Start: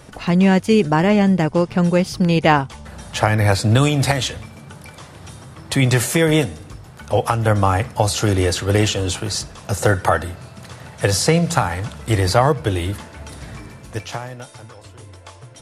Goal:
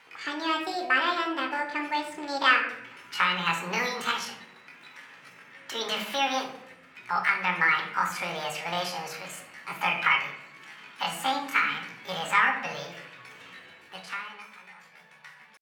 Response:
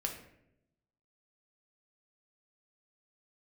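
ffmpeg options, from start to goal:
-filter_complex "[0:a]bandpass=frequency=1200:width_type=q:width=1.5:csg=0,asetrate=74167,aresample=44100,atempo=0.594604[link_01];[1:a]atrim=start_sample=2205[link_02];[link_01][link_02]afir=irnorm=-1:irlink=0,volume=-2.5dB"

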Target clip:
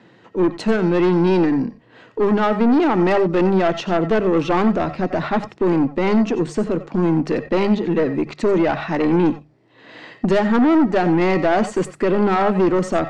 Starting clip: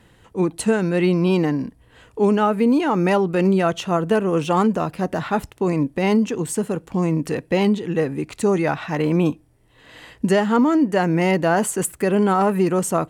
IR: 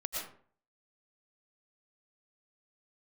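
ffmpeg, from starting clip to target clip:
-filter_complex "[0:a]highpass=frequency=130:width=0.5412,highpass=frequency=130:width=1.3066,equalizer=frequency=230:width_type=q:width=4:gain=3,equalizer=frequency=340:width_type=q:width=4:gain=5,equalizer=frequency=660:width_type=q:width=4:gain=3,equalizer=frequency=3100:width_type=q:width=4:gain=-5,lowpass=frequency=5200:width=0.5412,lowpass=frequency=5200:width=1.3066,aeval=exprs='(tanh(6.31*val(0)+0.25)-tanh(0.25))/6.31':channel_layout=same,bandreject=frequency=50:width_type=h:width=6,bandreject=frequency=100:width_type=h:width=6,bandreject=frequency=150:width_type=h:width=6,bandreject=frequency=200:width_type=h:width=6[link_01];[1:a]atrim=start_sample=2205,afade=type=out:start_time=0.14:duration=0.01,atrim=end_sample=6615[link_02];[link_01][link_02]afir=irnorm=-1:irlink=0,volume=6.5dB"

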